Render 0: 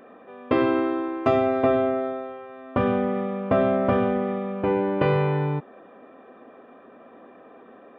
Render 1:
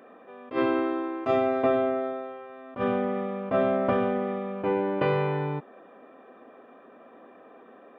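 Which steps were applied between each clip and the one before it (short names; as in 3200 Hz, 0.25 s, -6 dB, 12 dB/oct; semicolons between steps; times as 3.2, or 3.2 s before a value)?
HPF 190 Hz 6 dB/oct; attack slew limiter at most 250 dB/s; gain -2 dB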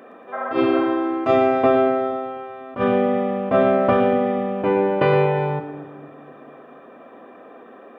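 spectral repair 0.35–0.83, 520–2100 Hz after; split-band echo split 340 Hz, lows 0.242 s, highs 0.116 s, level -11 dB; gain +7 dB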